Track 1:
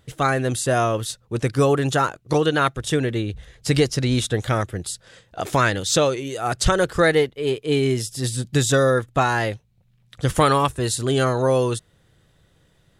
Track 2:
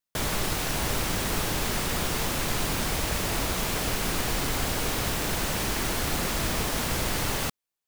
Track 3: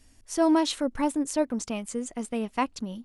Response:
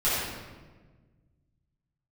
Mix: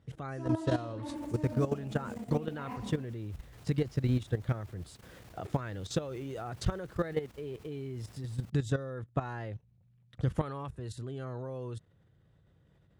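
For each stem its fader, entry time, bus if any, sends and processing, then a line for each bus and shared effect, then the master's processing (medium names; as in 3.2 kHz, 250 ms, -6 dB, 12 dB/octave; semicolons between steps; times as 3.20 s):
-3.0 dB, 0.00 s, bus A, no send, peaking EQ 67 Hz -8.5 dB 0.26 oct
-16.5 dB, 1.00 s, no bus, no send, treble shelf 2.8 kHz -4 dB; saturation -21 dBFS, distortion -20 dB; auto duck -8 dB, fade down 1.70 s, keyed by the first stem
-9.5 dB, 0.00 s, bus A, send -13.5 dB, treble shelf 6.5 kHz -10.5 dB
bus A: 0.0 dB, low-pass 1.5 kHz 6 dB/octave; compression 2:1, threshold -34 dBFS, peak gain reduction 10 dB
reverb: on, RT60 1.4 s, pre-delay 6 ms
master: high-pass 54 Hz 24 dB/octave; bass shelf 140 Hz +10.5 dB; level held to a coarse grid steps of 13 dB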